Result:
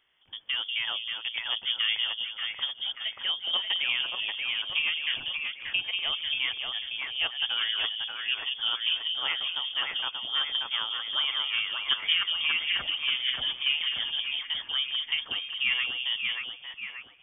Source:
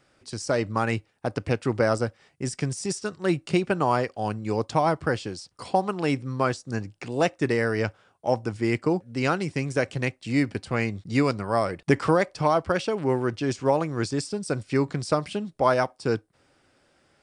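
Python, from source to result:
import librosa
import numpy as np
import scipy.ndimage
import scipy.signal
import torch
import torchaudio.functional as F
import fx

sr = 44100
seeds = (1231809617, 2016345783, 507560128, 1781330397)

y = fx.echo_split(x, sr, split_hz=670.0, low_ms=190, high_ms=583, feedback_pct=52, wet_db=-3)
y = fx.freq_invert(y, sr, carrier_hz=3400)
y = y * librosa.db_to_amplitude(-7.0)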